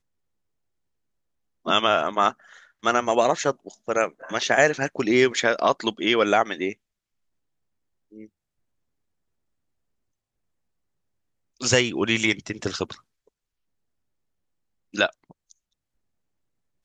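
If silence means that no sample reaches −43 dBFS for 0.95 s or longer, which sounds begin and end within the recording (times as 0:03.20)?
0:01.65–0:06.73
0:08.12–0:08.26
0:11.61–0:12.99
0:14.94–0:15.51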